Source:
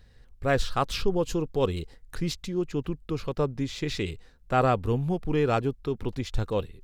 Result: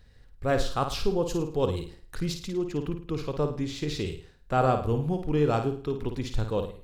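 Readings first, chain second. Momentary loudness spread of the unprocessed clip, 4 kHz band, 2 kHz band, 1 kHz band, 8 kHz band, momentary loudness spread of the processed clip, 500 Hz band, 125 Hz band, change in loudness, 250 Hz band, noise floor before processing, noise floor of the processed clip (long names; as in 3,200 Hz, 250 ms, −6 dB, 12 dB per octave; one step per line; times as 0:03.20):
8 LU, −1.5 dB, −3.5 dB, −0.5 dB, −0.5 dB, 9 LU, 0.0 dB, 0.0 dB, −0.5 dB, 0.0 dB, −55 dBFS, −54 dBFS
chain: dynamic equaliser 2,100 Hz, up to −6 dB, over −44 dBFS, Q 1.5
flutter between parallel walls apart 9.2 metres, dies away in 0.43 s
level −1 dB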